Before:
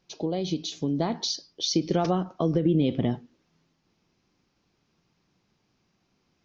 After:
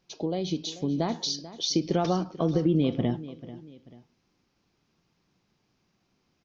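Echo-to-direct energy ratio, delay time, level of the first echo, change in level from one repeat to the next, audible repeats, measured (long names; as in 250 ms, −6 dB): −15.5 dB, 439 ms, −16.0 dB, −8.0 dB, 2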